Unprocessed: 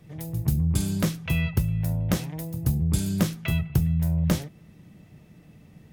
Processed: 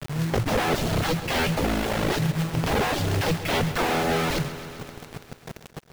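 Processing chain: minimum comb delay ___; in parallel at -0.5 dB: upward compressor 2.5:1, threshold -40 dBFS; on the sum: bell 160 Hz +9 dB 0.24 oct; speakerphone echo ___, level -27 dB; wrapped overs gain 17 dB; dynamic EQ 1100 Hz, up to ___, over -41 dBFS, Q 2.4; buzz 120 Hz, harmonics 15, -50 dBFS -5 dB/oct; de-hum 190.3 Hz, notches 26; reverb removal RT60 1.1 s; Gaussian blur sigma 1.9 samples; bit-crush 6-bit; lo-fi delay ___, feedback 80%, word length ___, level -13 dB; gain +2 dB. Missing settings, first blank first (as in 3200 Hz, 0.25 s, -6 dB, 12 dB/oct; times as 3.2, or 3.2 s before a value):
7.8 ms, 0.12 s, -4 dB, 0.134 s, 8-bit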